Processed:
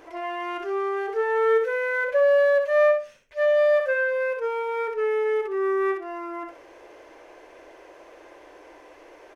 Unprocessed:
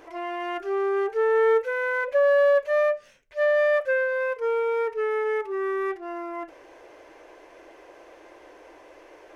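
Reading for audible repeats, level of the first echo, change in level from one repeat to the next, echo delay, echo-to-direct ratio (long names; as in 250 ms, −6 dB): 2, −6.0 dB, −15.0 dB, 62 ms, −6.0 dB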